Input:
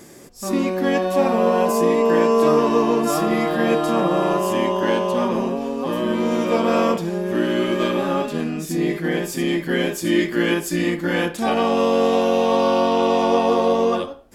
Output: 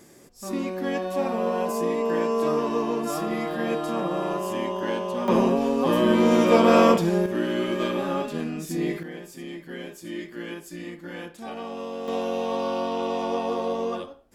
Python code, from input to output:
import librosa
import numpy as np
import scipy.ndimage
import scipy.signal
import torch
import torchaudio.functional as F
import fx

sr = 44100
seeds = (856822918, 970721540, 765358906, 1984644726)

y = fx.gain(x, sr, db=fx.steps((0.0, -8.0), (5.28, 2.0), (7.26, -5.5), (9.03, -16.0), (12.08, -9.5)))